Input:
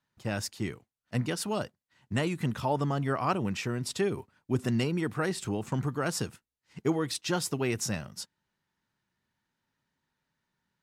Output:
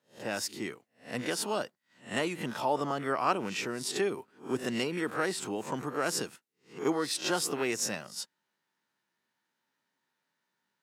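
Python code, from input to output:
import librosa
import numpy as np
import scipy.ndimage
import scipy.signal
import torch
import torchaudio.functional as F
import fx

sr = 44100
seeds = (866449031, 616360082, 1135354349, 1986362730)

y = fx.spec_swells(x, sr, rise_s=0.31)
y = scipy.signal.sosfilt(scipy.signal.butter(2, 290.0, 'highpass', fs=sr, output='sos'), y)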